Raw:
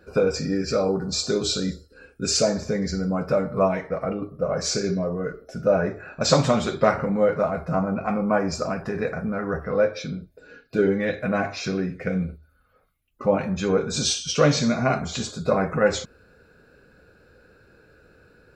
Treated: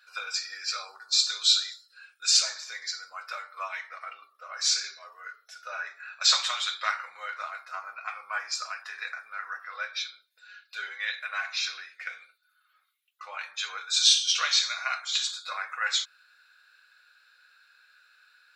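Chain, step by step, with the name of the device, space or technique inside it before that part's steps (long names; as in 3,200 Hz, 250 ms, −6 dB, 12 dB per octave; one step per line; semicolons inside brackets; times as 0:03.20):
headphones lying on a table (high-pass filter 1,300 Hz 24 dB per octave; parametric band 3,700 Hz +9 dB 0.55 octaves)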